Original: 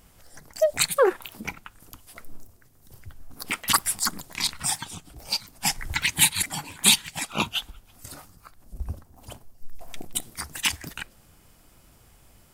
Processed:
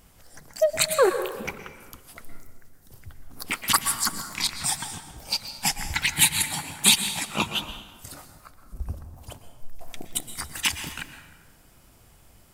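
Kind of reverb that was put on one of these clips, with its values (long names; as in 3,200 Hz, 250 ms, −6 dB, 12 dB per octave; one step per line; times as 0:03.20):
dense smooth reverb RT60 1.3 s, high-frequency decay 0.65×, pre-delay 105 ms, DRR 8.5 dB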